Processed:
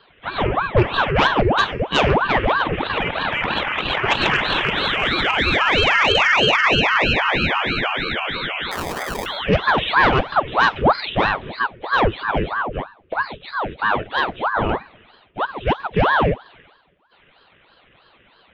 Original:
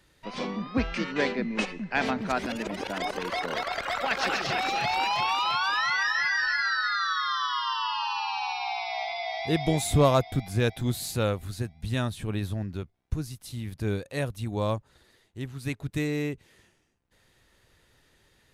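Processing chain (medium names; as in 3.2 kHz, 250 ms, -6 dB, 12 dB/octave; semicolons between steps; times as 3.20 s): knee-point frequency compression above 2.5 kHz 4:1; resonant low shelf 180 Hz -10 dB, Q 3; static phaser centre 1.7 kHz, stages 4; 8.71–9.26 s: sample-rate reducer 1.4 kHz, jitter 0%; sine folder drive 11 dB, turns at -7 dBFS; two-slope reverb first 0.47 s, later 3 s, from -28 dB, DRR 12 dB; ring modulator with a swept carrier 750 Hz, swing 85%, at 3.1 Hz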